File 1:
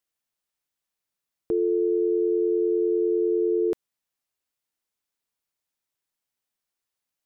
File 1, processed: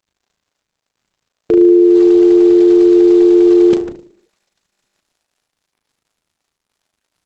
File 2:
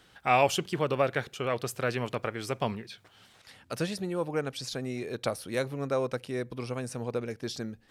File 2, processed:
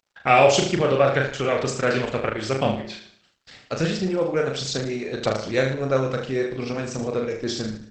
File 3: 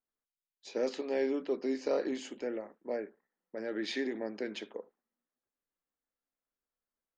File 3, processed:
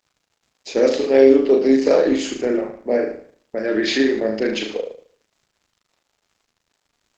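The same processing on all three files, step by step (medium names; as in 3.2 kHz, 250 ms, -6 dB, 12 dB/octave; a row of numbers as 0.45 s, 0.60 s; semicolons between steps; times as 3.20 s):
reverb removal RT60 0.55 s; gate -55 dBFS, range -52 dB; peaking EQ 960 Hz -7.5 dB 0.39 oct; crackle 88 per s -62 dBFS; on a send: flutter echo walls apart 6.4 m, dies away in 0.59 s; on the sum: Opus 12 kbps 48 kHz; peak normalisation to -1.5 dBFS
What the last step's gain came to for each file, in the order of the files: +13.5 dB, +8.5 dB, +16.0 dB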